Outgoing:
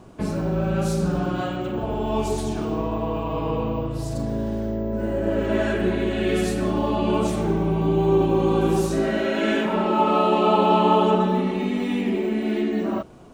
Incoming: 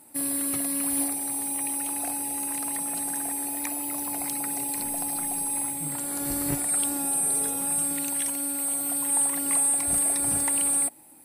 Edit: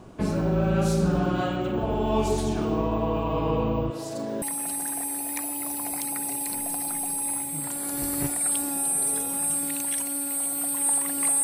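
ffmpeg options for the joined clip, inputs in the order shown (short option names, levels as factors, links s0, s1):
-filter_complex "[0:a]asettb=1/sr,asplit=3[s0][s1][s2];[s0]atrim=end=3.904[s3];[s1]atrim=start=3.9:end=4.42,asetpts=PTS-STARTPTS,afade=t=in:d=0.004:c=qsin,afade=t=out:st=0.516:d=0.004:c=qsin,highpass=300[s4];[s2]atrim=start=4.416[s5];[s3][s4]acrossfade=d=0.004:c1=hsin:c2=qsin[s6];[s6][s5]acrossfade=d=0.004:c1=qsin:c2=hsin,apad=whole_dur=11.43,atrim=end=11.43,atrim=end=4.422[s7];[1:a]atrim=start=2.698:end=9.71[s8];[s7][s8]acrossfade=d=0.004:c1=hsin:c2=hsin"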